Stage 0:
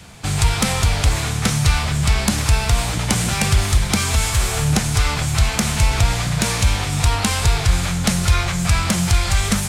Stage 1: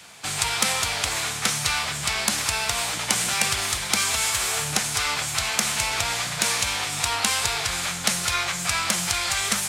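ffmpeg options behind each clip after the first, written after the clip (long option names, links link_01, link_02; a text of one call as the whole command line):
ffmpeg -i in.wav -af "highpass=frequency=980:poles=1" out.wav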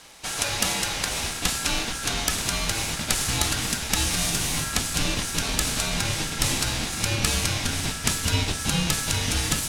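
ffmpeg -i in.wav -af "aeval=exprs='val(0)*sin(2*PI*1500*n/s)':channel_layout=same,asubboost=boost=4.5:cutoff=250,volume=1dB" out.wav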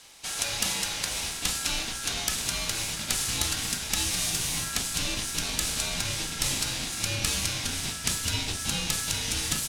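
ffmpeg -i in.wav -filter_complex "[0:a]acrossover=split=2300[link_01][link_02];[link_01]asplit=2[link_03][link_04];[link_04]adelay=37,volume=-5dB[link_05];[link_03][link_05]amix=inputs=2:normalize=0[link_06];[link_02]acontrast=71[link_07];[link_06][link_07]amix=inputs=2:normalize=0,volume=-8.5dB" out.wav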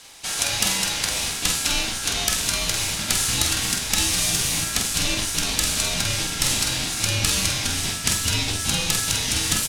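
ffmpeg -i in.wav -filter_complex "[0:a]asplit=2[link_01][link_02];[link_02]adelay=47,volume=-6dB[link_03];[link_01][link_03]amix=inputs=2:normalize=0,volume=5.5dB" out.wav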